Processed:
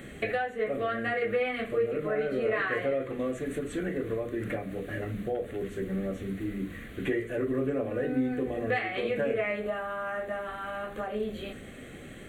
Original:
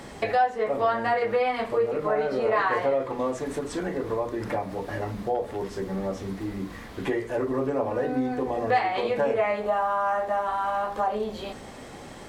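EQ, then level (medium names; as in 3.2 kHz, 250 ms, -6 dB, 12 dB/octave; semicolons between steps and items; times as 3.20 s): hum notches 50/100 Hz; static phaser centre 2.2 kHz, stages 4; 0.0 dB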